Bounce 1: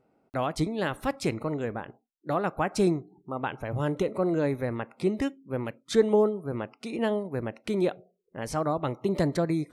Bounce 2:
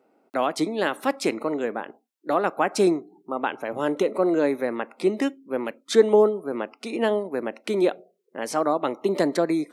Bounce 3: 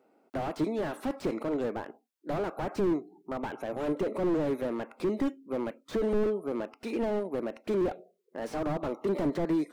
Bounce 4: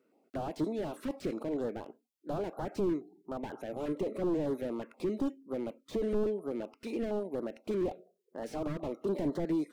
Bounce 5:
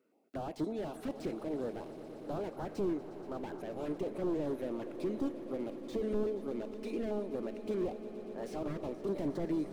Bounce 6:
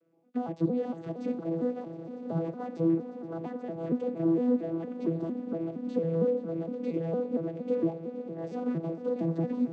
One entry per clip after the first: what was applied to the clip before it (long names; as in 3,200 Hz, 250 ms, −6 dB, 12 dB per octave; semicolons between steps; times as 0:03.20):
high-pass filter 240 Hz 24 dB per octave; level +5.5 dB
slew-rate limiting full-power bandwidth 28 Hz; level −2.5 dB
notch on a step sequencer 8.3 Hz 780–2,400 Hz; level −3 dB
echo that builds up and dies away 119 ms, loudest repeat 5, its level −16.5 dB; level −3 dB
vocoder with an arpeggio as carrier bare fifth, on E3, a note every 230 ms; level +7.5 dB